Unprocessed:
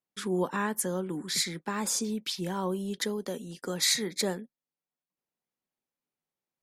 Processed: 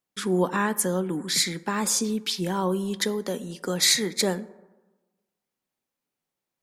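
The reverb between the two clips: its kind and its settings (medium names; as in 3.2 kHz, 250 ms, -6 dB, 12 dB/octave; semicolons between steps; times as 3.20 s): plate-style reverb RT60 1.2 s, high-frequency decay 0.4×, DRR 16.5 dB; trim +5.5 dB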